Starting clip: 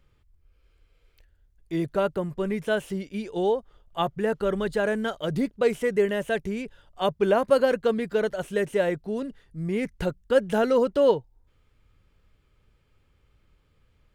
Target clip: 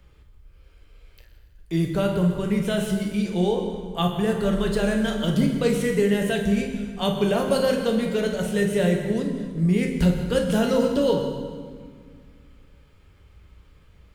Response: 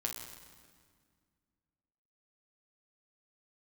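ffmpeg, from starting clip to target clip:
-filter_complex "[0:a]acrossover=split=230|3000[a][b][c];[b]acompressor=threshold=-54dB:ratio=1.5[d];[a][d][c]amix=inputs=3:normalize=0[e];[1:a]atrim=start_sample=2205[f];[e][f]afir=irnorm=-1:irlink=0,volume=8.5dB"

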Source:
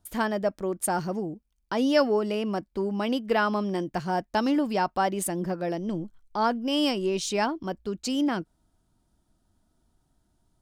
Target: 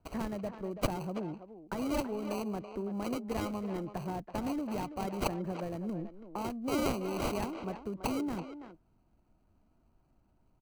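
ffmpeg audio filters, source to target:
-filter_complex "[0:a]acrossover=split=200|1800[a][b][c];[a]asoftclip=type=tanh:threshold=-40dB[d];[b]acompressor=threshold=-38dB:ratio=6[e];[c]acrusher=samples=25:mix=1:aa=0.000001[f];[d][e][f]amix=inputs=3:normalize=0,asplit=2[g][h];[h]adelay=330,highpass=300,lowpass=3.4k,asoftclip=type=hard:threshold=-25dB,volume=-9dB[i];[g][i]amix=inputs=2:normalize=0"

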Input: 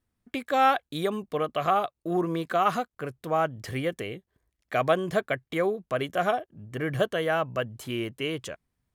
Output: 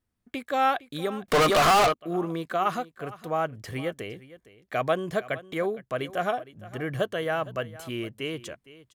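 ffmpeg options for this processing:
-filter_complex "[0:a]aecho=1:1:461:0.126,asettb=1/sr,asplit=3[a][b][c];[a]atrim=end=1.284[d];[b]atrim=start=1.28:end=1.94,asetpts=PTS-STARTPTS,afade=t=in:d=0.004:c=qsin,afade=t=out:st=0.656:d=0.004:c=qsin,asplit=2[e][f];[f]highpass=f=720:p=1,volume=38dB,asoftclip=type=tanh:threshold=-11dB[g];[e][g]amix=inputs=2:normalize=0,lowpass=f=8k:p=1,volume=-6dB[h];[c]atrim=start=1.936[i];[d][h]acrossfade=d=0.004:c1=hsin:c2=qsin[j];[j][i]acrossfade=d=0.004:c1=qsin:c2=hsin,volume=-2dB"

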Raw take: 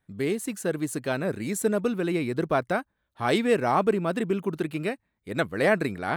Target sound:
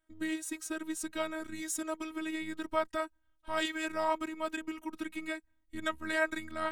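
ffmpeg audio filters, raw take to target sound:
-filter_complex "[0:a]asubboost=boost=6:cutoff=180,acrossover=split=680|1400[a][b][c];[a]acompressor=threshold=-31dB:ratio=16[d];[d][b][c]amix=inputs=3:normalize=0,afftfilt=real='hypot(re,im)*cos(PI*b)':imag='0':win_size=512:overlap=0.75,asetrate=40517,aresample=44100"

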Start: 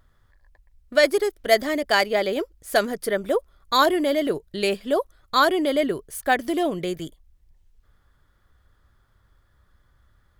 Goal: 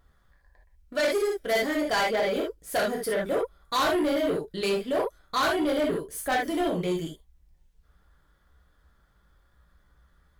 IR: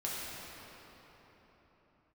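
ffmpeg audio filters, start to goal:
-filter_complex "[1:a]atrim=start_sample=2205,atrim=end_sample=3969,asetrate=48510,aresample=44100[a];[0:a][a]afir=irnorm=-1:irlink=0,asoftclip=type=tanh:threshold=-20.5dB"

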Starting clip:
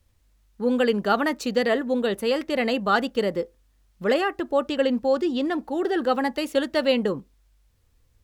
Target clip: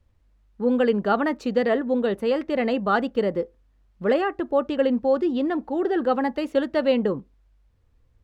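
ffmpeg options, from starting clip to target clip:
-af "lowpass=f=1.4k:p=1,volume=1.5dB"

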